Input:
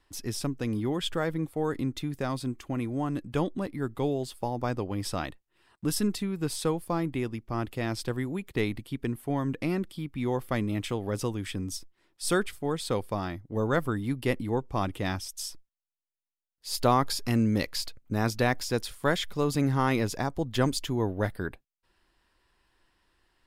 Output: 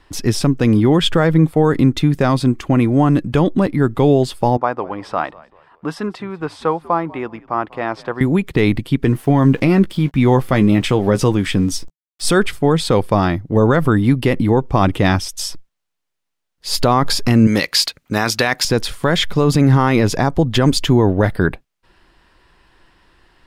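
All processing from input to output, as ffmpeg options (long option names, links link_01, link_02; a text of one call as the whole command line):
ffmpeg -i in.wav -filter_complex "[0:a]asettb=1/sr,asplit=3[link_01][link_02][link_03];[link_01]atrim=end=4.574[link_04];[link_02]atrim=start=4.57:end=8.21,asetpts=PTS-STARTPTS,afade=type=in:duration=0.004:curve=qsin,afade=type=out:start_time=3.636:duration=0.004:curve=qsin,bandpass=frequency=990:width_type=q:width=1.3,asplit=4[link_05][link_06][link_07][link_08];[link_06]adelay=193,afreqshift=-85,volume=-22dB[link_09];[link_07]adelay=386,afreqshift=-170,volume=-30.9dB[link_10];[link_08]adelay=579,afreqshift=-255,volume=-39.7dB[link_11];[link_05][link_09][link_10][link_11]amix=inputs=4:normalize=0,atrim=end_sample=160524[link_12];[link_03]atrim=start=8.206[link_13];[link_04][link_12]acrossfade=duration=0.004:curve1=hsin:curve2=qsin[link_14];[link_14][link_13]acrossfade=duration=0.004:curve1=qsin:curve2=hsin,asettb=1/sr,asplit=3[link_15][link_16][link_17];[link_15]atrim=end=9.034[link_18];[link_16]atrim=start=9.03:end=12.26,asetpts=PTS-STARTPTS,afade=type=in:duration=0.004:curve=qsin,afade=type=out:start_time=3.226:duration=0.004:curve=qsin,aeval=exprs='val(0)*gte(abs(val(0)),0.00237)':channel_layout=same,asplit=2[link_19][link_20];[link_20]adelay=15,volume=-10.5dB[link_21];[link_19][link_21]amix=inputs=2:normalize=0,atrim=end_sample=142443[link_22];[link_17]atrim=start=12.256[link_23];[link_18][link_22]acrossfade=duration=0.004:curve1=hsin:curve2=qsin[link_24];[link_24][link_23]acrossfade=duration=0.004:curve1=qsin:curve2=hsin,asettb=1/sr,asplit=3[link_25][link_26][link_27];[link_25]atrim=end=17.474[link_28];[link_26]atrim=start=17.47:end=18.65,asetpts=PTS-STARTPTS,afade=type=in:duration=0.004:curve=qsin,afade=type=out:start_time=1.176:duration=0.004:curve=qsin,highpass=frequency=140:poles=1,deesser=0.3,tiltshelf=frequency=850:gain=-6.5[link_29];[link_27]atrim=start=18.646[link_30];[link_28][link_29]acrossfade=duration=0.004:curve1=hsin:curve2=qsin[link_31];[link_31][link_30]acrossfade=duration=0.004:curve1=qsin:curve2=hsin,lowpass=frequency=3900:poles=1,equalizer=frequency=160:width_type=o:width=0.28:gain=4.5,alimiter=level_in=19.5dB:limit=-1dB:release=50:level=0:latency=1,volume=-2.5dB" out.wav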